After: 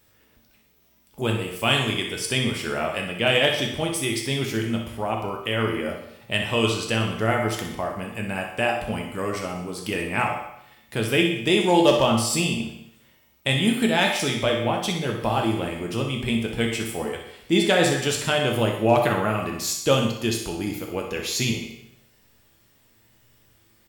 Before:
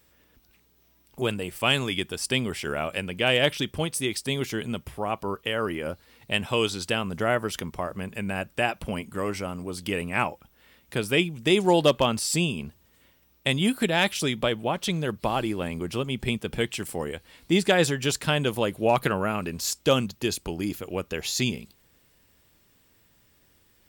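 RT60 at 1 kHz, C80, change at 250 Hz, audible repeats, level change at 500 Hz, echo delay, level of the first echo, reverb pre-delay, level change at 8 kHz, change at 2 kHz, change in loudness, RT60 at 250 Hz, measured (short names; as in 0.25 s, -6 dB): 0.75 s, 7.5 dB, +3.5 dB, 1, +2.5 dB, 62 ms, -9.0 dB, 9 ms, +2.5 dB, +2.5 dB, +3.0 dB, 0.80 s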